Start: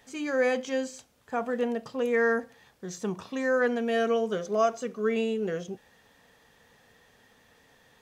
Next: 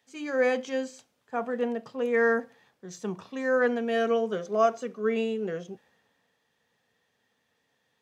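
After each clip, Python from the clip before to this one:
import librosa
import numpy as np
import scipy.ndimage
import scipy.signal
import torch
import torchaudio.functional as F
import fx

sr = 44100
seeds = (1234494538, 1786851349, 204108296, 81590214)

y = scipy.signal.sosfilt(scipy.signal.butter(2, 130.0, 'highpass', fs=sr, output='sos'), x)
y = fx.high_shelf(y, sr, hz=5700.0, db=-7.5)
y = fx.band_widen(y, sr, depth_pct=40)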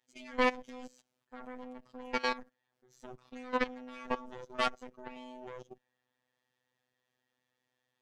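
y = fx.cheby_harmonics(x, sr, harmonics=(6,), levels_db=(-7,), full_scale_db=-11.0)
y = fx.level_steps(y, sr, step_db=19)
y = fx.robotise(y, sr, hz=126.0)
y = y * 10.0 ** (-5.5 / 20.0)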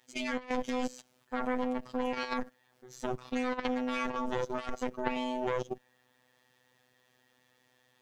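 y = fx.over_compress(x, sr, threshold_db=-38.0, ratio=-0.5)
y = y * 10.0 ** (9.0 / 20.0)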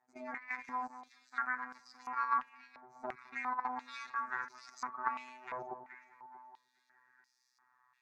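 y = fx.fixed_phaser(x, sr, hz=1300.0, stages=4)
y = fx.echo_alternate(y, sr, ms=212, hz=1200.0, feedback_pct=66, wet_db=-11.0)
y = fx.filter_held_bandpass(y, sr, hz=2.9, low_hz=660.0, high_hz=5000.0)
y = y * 10.0 ** (9.5 / 20.0)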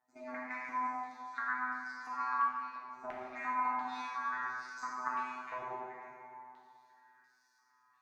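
y = fx.rev_plate(x, sr, seeds[0], rt60_s=1.9, hf_ratio=0.75, predelay_ms=0, drr_db=-4.5)
y = y * 10.0 ** (-4.5 / 20.0)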